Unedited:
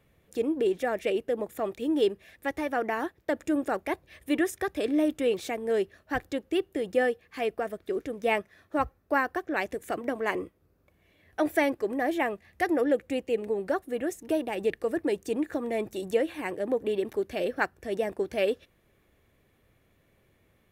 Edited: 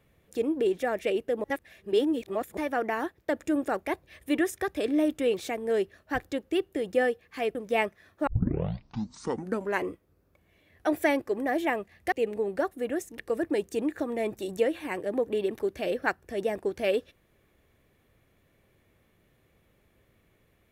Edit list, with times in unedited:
1.44–2.57 reverse
7.55–8.08 cut
8.8 tape start 1.56 s
12.65–13.23 cut
14.3–14.73 cut

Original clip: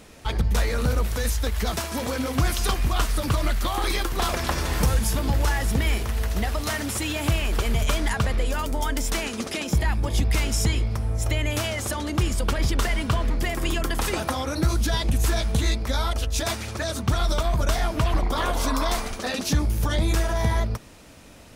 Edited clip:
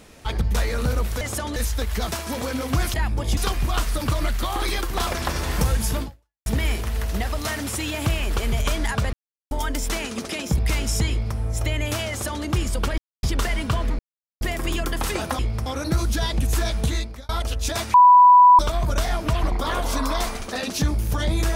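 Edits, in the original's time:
5.24–5.68 fade out exponential
8.35–8.73 mute
9.8–10.23 move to 2.59
10.76–11.03 copy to 14.37
11.74–12.09 copy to 1.21
12.63 insert silence 0.25 s
13.39 insert silence 0.42 s
15.57–16 fade out
16.65–17.3 bleep 988 Hz -7.5 dBFS

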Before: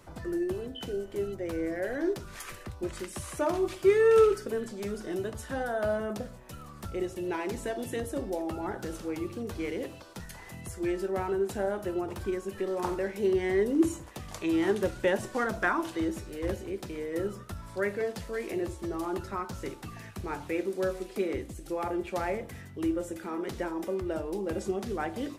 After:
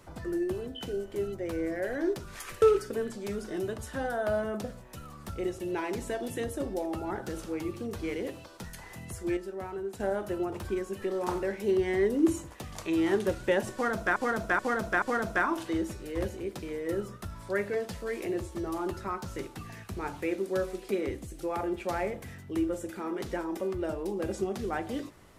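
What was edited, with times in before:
2.62–4.18 cut
10.93–11.56 gain -7 dB
15.29–15.72 loop, 4 plays

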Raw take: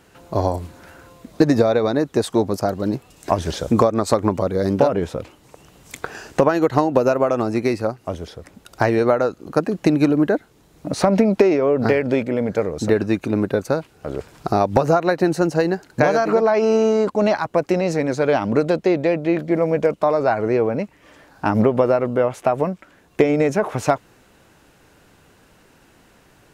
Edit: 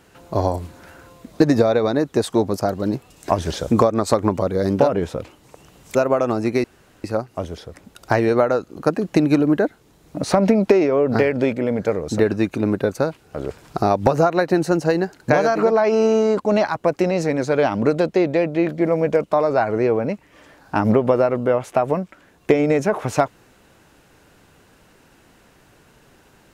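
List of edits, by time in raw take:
5.95–7.05 cut
7.74 insert room tone 0.40 s

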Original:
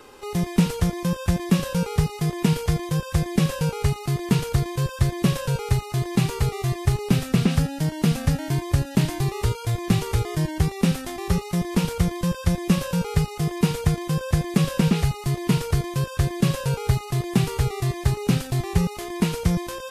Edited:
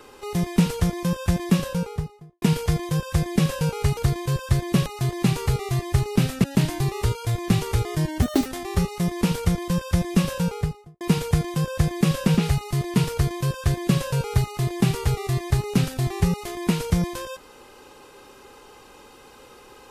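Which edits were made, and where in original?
1.5–2.42 studio fade out
3.97–4.47 cut
5.36–5.79 cut
7.37–8.84 cut
10.62–10.99 speed 156%
12.91–13.54 studio fade out

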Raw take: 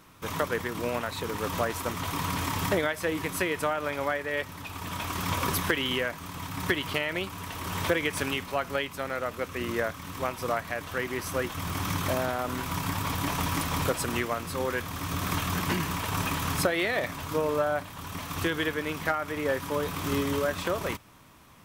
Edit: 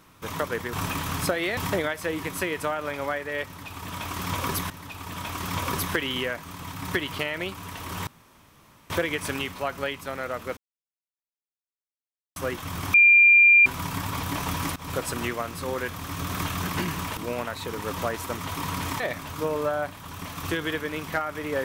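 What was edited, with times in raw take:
0.73–2.56 swap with 16.09–16.93
4.45–5.69 loop, 2 plays
7.82 insert room tone 0.83 s
9.49–11.28 mute
11.86–12.58 bleep 2390 Hz -11.5 dBFS
13.68–13.95 fade in, from -21.5 dB

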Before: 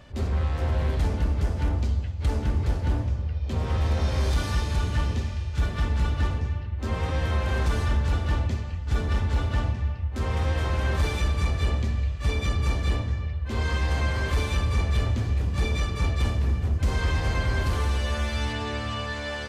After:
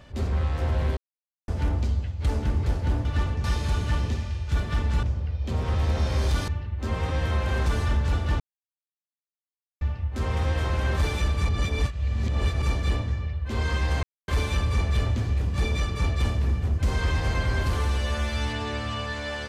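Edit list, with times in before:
0.97–1.48 mute
3.05–4.5 swap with 6.09–6.48
8.4–9.81 mute
11.49–12.62 reverse
14.03–14.28 mute

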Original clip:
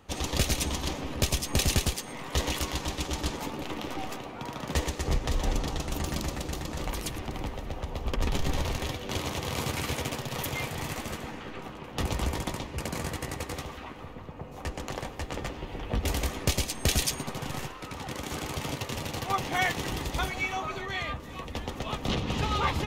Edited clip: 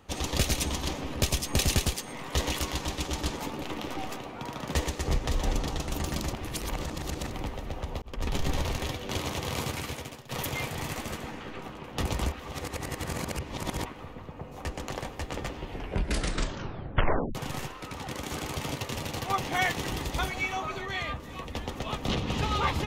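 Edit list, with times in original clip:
6.33–7.3 reverse
8.02–8.48 fade in equal-power
9.55–10.29 fade out, to -17 dB
12.32–13.85 reverse
15.68 tape stop 1.67 s

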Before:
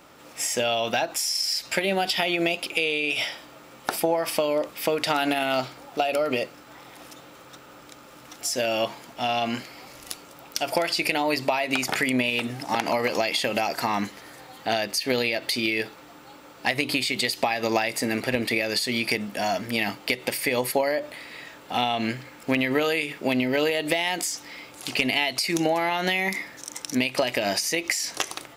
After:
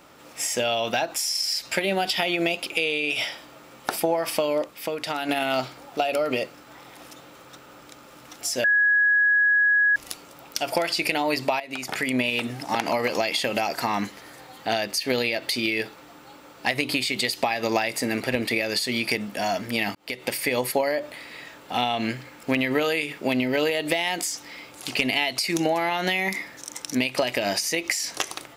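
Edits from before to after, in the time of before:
4.64–5.29 gain -5 dB
8.64–9.96 bleep 1670 Hz -16 dBFS
11.6–12.21 fade in, from -14 dB
19.95–20.3 fade in

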